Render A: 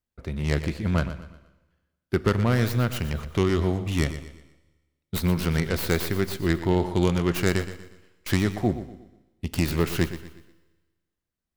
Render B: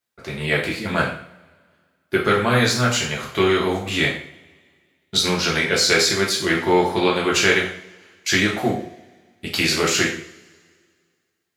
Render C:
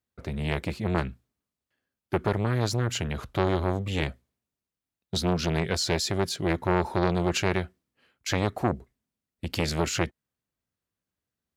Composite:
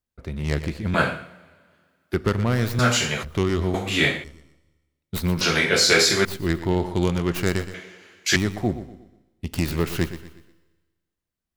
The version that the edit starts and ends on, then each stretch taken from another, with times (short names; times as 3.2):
A
0.94–2.14 from B
2.79–3.23 from B
3.74–4.24 from B
5.41–6.25 from B
7.74–8.36 from B
not used: C